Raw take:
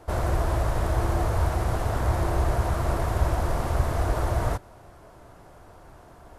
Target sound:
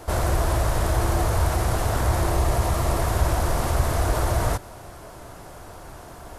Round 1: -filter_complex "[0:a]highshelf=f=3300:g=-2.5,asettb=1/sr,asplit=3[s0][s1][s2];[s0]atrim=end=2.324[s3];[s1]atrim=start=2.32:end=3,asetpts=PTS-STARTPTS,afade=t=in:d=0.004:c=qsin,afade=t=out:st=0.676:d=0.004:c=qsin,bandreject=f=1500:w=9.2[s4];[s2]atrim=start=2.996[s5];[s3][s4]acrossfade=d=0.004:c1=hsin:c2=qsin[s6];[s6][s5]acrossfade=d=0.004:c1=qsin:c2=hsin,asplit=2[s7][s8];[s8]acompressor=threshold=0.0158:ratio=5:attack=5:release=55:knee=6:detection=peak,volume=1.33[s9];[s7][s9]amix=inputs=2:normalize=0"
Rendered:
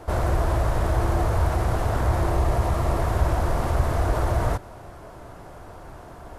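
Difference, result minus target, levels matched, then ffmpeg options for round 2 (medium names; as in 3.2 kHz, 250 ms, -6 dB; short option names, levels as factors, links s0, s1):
8 kHz band -9.0 dB
-filter_complex "[0:a]highshelf=f=3300:g=8.5,asettb=1/sr,asplit=3[s0][s1][s2];[s0]atrim=end=2.324[s3];[s1]atrim=start=2.32:end=3,asetpts=PTS-STARTPTS,afade=t=in:d=0.004:c=qsin,afade=t=out:st=0.676:d=0.004:c=qsin,bandreject=f=1500:w=9.2[s4];[s2]atrim=start=2.996[s5];[s3][s4]acrossfade=d=0.004:c1=hsin:c2=qsin[s6];[s6][s5]acrossfade=d=0.004:c1=qsin:c2=hsin,asplit=2[s7][s8];[s8]acompressor=threshold=0.0158:ratio=5:attack=5:release=55:knee=6:detection=peak,volume=1.33[s9];[s7][s9]amix=inputs=2:normalize=0"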